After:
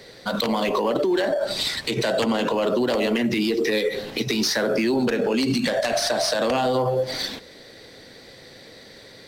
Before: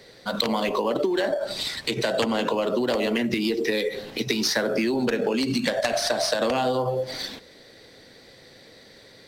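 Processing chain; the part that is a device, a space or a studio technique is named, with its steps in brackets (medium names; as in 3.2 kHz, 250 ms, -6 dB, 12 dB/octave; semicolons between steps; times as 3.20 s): soft clipper into limiter (saturation -14 dBFS, distortion -22 dB; peak limiter -19 dBFS, peak gain reduction 4.5 dB); trim +4.5 dB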